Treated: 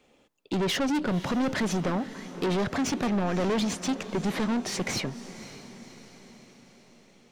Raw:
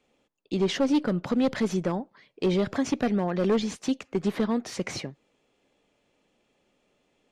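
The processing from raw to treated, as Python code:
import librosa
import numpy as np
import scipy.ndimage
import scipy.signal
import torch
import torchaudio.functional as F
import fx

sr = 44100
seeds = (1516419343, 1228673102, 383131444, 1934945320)

y = 10.0 ** (-31.0 / 20.0) * np.tanh(x / 10.0 ** (-31.0 / 20.0))
y = fx.echo_diffused(y, sr, ms=535, feedback_pct=54, wet_db=-14.5)
y = y * librosa.db_to_amplitude(7.0)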